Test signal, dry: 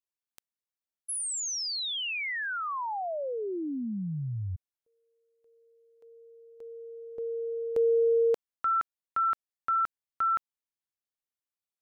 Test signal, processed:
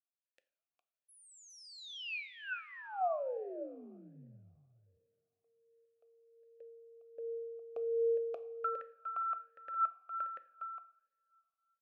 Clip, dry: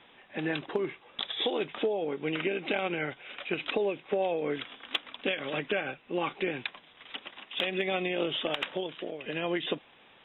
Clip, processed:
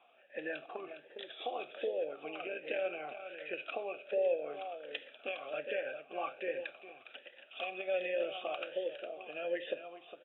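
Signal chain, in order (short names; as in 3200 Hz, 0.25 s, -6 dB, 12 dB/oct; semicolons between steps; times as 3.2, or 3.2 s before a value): echo 0.409 s -9.5 dB; two-slope reverb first 0.58 s, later 2.8 s, from -18 dB, DRR 11 dB; vowel sweep a-e 1.3 Hz; gain +2.5 dB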